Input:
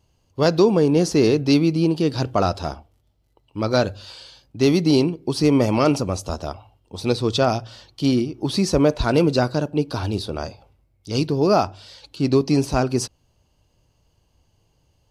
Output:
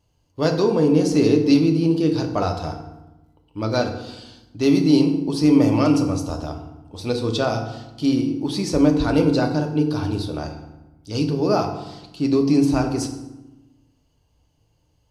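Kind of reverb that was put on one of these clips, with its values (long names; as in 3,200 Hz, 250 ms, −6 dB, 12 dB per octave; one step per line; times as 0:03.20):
feedback delay network reverb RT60 1 s, low-frequency decay 1.45×, high-frequency decay 0.65×, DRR 3.5 dB
level −4 dB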